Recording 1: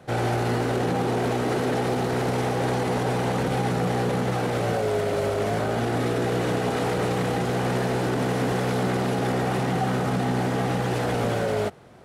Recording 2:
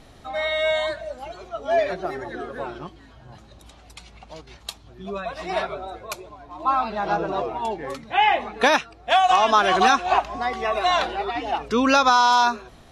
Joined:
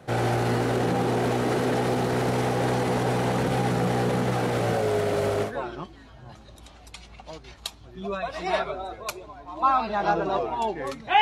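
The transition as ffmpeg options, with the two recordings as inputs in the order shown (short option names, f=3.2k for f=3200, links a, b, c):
-filter_complex "[0:a]apad=whole_dur=11.21,atrim=end=11.21,atrim=end=5.53,asetpts=PTS-STARTPTS[a];[1:a]atrim=start=2.44:end=8.24,asetpts=PTS-STARTPTS[b];[a][b]acrossfade=d=0.12:c1=tri:c2=tri"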